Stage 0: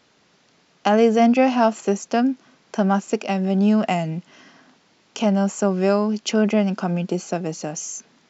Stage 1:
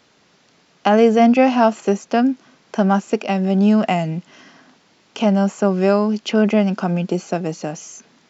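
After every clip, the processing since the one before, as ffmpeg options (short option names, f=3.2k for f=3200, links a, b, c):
-filter_complex "[0:a]acrossover=split=4400[a][b];[b]acompressor=threshold=-44dB:ratio=4:attack=1:release=60[c];[a][c]amix=inputs=2:normalize=0,volume=3dB"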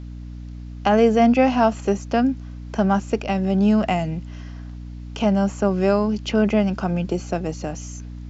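-af "aeval=exprs='val(0)+0.0316*(sin(2*PI*60*n/s)+sin(2*PI*2*60*n/s)/2+sin(2*PI*3*60*n/s)/3+sin(2*PI*4*60*n/s)/4+sin(2*PI*5*60*n/s)/5)':c=same,volume=-3dB"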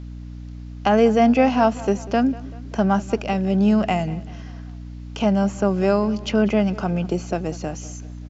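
-filter_complex "[0:a]asplit=2[a][b];[b]adelay=193,lowpass=f=4.8k:p=1,volume=-19dB,asplit=2[c][d];[d]adelay=193,lowpass=f=4.8k:p=1,volume=0.49,asplit=2[e][f];[f]adelay=193,lowpass=f=4.8k:p=1,volume=0.49,asplit=2[g][h];[h]adelay=193,lowpass=f=4.8k:p=1,volume=0.49[i];[a][c][e][g][i]amix=inputs=5:normalize=0"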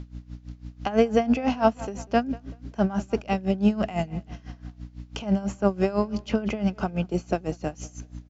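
-af "aeval=exprs='val(0)*pow(10,-18*(0.5-0.5*cos(2*PI*6*n/s))/20)':c=same"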